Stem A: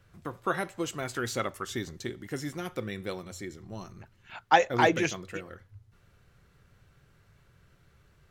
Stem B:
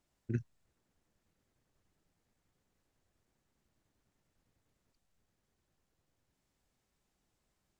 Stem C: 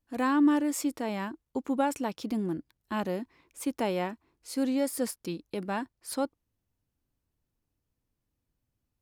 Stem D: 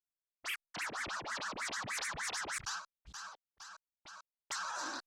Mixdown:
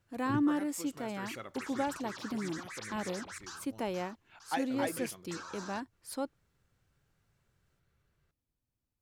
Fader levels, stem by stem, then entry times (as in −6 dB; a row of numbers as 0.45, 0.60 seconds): −14.0, −2.0, −6.0, −6.5 decibels; 0.00, 0.00, 0.00, 0.80 seconds